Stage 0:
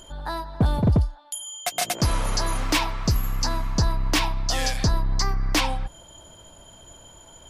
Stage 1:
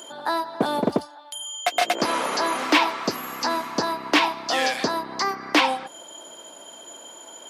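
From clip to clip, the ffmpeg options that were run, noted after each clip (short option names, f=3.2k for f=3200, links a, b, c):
-filter_complex "[0:a]acrossover=split=4000[a][b];[b]acompressor=threshold=-43dB:ratio=4:attack=1:release=60[c];[a][c]amix=inputs=2:normalize=0,highpass=f=270:w=0.5412,highpass=f=270:w=1.3066,volume=6.5dB"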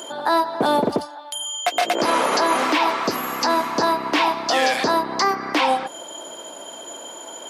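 -af "equalizer=f=540:t=o:w=2.5:g=3.5,alimiter=level_in=13.5dB:limit=-1dB:release=50:level=0:latency=1,volume=-8.5dB"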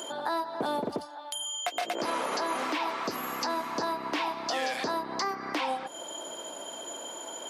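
-af "acompressor=threshold=-31dB:ratio=2,volume=-3.5dB"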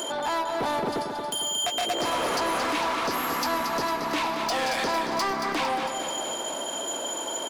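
-af "asoftclip=type=tanh:threshold=-32.5dB,aecho=1:1:227|454|681|908|1135|1362|1589|1816:0.447|0.264|0.155|0.0917|0.0541|0.0319|0.0188|0.0111,volume=8.5dB"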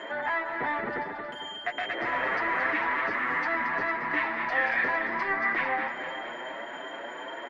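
-filter_complex "[0:a]lowpass=f=1.9k:t=q:w=7.8,asplit=2[a][b];[b]adelay=7.2,afreqshift=2.6[c];[a][c]amix=inputs=2:normalize=1,volume=-3.5dB"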